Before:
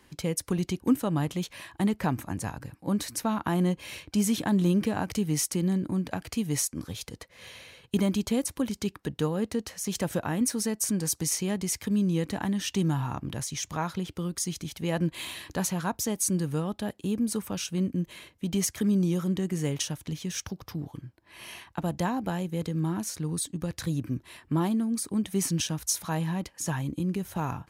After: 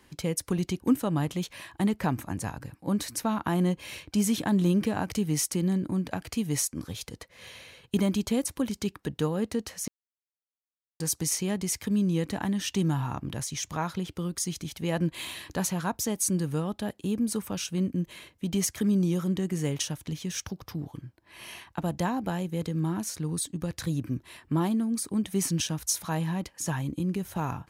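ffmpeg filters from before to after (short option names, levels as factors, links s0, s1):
-filter_complex "[0:a]asplit=3[s0][s1][s2];[s0]atrim=end=9.88,asetpts=PTS-STARTPTS,afade=t=out:st=9.876:d=0.004:c=hsin[s3];[s1]atrim=start=9.88:end=11,asetpts=PTS-STARTPTS,volume=0[s4];[s2]atrim=start=11,asetpts=PTS-STARTPTS,afade=t=in:d=0.004:c=hsin[s5];[s3][s4][s5]concat=n=3:v=0:a=1"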